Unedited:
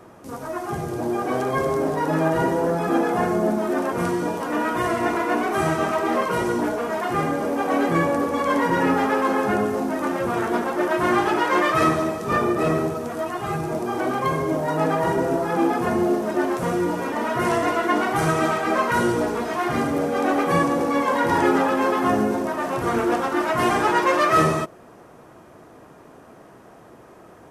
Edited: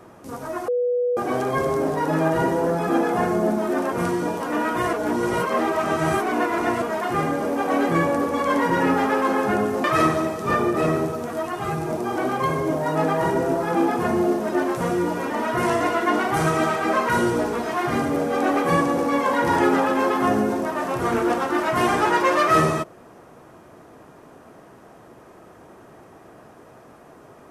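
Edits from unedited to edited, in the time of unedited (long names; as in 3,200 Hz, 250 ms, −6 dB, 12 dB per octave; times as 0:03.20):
0:00.68–0:01.17: beep over 490 Hz −18.5 dBFS
0:04.93–0:06.82: reverse
0:09.84–0:11.66: remove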